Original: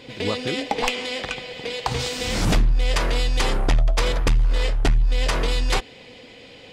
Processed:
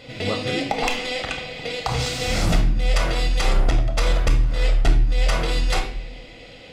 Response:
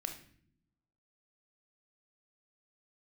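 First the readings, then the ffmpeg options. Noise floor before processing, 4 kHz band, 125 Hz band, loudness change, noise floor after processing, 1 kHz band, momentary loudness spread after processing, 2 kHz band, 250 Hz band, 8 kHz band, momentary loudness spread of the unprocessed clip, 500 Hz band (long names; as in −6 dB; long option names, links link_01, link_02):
−45 dBFS, −0.5 dB, +1.5 dB, +0.5 dB, −42 dBFS, +0.5 dB, 8 LU, +0.5 dB, +0.5 dB, −0.5 dB, 9 LU, 0.0 dB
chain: -filter_complex "[0:a]acompressor=threshold=-18dB:ratio=6[link_01];[1:a]atrim=start_sample=2205[link_02];[link_01][link_02]afir=irnorm=-1:irlink=0,volume=2.5dB"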